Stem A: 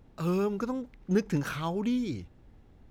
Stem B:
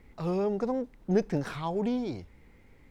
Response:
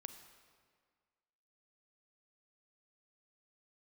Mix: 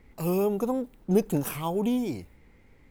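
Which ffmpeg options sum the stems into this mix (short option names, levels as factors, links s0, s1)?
-filter_complex "[0:a]highpass=f=300:p=1,aexciter=amount=9:drive=3.3:freq=7900,volume=0.75[s0];[1:a]volume=1,asplit=2[s1][s2];[s2]apad=whole_len=128140[s3];[s0][s3]sidechaingate=range=0.0224:threshold=0.00282:ratio=16:detection=peak[s4];[s4][s1]amix=inputs=2:normalize=0"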